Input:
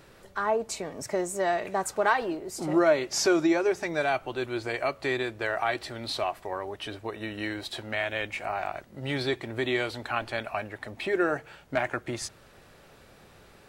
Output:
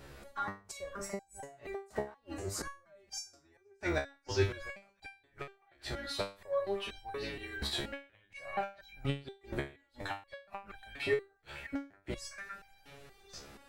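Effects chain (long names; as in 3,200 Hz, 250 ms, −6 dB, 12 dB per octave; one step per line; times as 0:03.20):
sub-octave generator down 2 octaves, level 0 dB
on a send: echo through a band-pass that steps 556 ms, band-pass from 1,700 Hz, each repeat 1.4 octaves, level −8.5 dB
on the sum: gate with flip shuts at −18 dBFS, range −35 dB
step-sequenced resonator 4.2 Hz 70–790 Hz
level +8.5 dB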